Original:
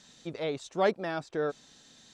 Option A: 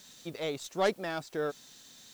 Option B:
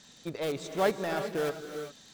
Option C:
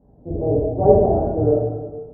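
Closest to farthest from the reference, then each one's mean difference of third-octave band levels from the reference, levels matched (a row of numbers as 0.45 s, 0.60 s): A, B, C; 4.5 dB, 8.5 dB, 15.5 dB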